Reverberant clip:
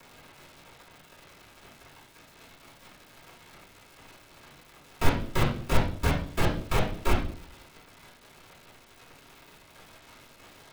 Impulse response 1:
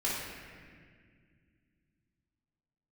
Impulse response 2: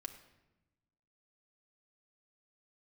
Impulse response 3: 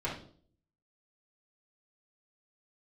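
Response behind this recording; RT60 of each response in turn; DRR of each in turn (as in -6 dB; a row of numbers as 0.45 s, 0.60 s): 3; 1.9 s, 1.0 s, 0.50 s; -9.0 dB, 4.0 dB, -8.0 dB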